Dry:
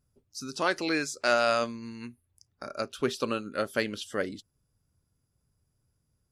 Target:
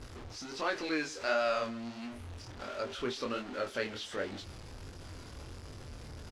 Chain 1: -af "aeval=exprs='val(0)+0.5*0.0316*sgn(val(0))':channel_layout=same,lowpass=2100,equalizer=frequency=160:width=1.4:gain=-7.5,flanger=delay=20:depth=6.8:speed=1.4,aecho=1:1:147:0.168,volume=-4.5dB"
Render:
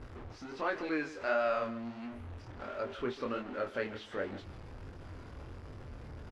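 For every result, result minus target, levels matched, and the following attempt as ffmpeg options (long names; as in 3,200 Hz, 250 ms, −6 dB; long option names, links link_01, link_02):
4,000 Hz band −8.5 dB; echo-to-direct +6 dB
-af "aeval=exprs='val(0)+0.5*0.0316*sgn(val(0))':channel_layout=same,lowpass=4900,equalizer=frequency=160:width=1.4:gain=-7.5,flanger=delay=20:depth=6.8:speed=1.4,aecho=1:1:147:0.168,volume=-4.5dB"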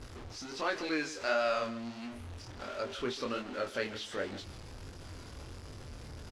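echo-to-direct +6 dB
-af "aeval=exprs='val(0)+0.5*0.0316*sgn(val(0))':channel_layout=same,lowpass=4900,equalizer=frequency=160:width=1.4:gain=-7.5,flanger=delay=20:depth=6.8:speed=1.4,aecho=1:1:147:0.0841,volume=-4.5dB"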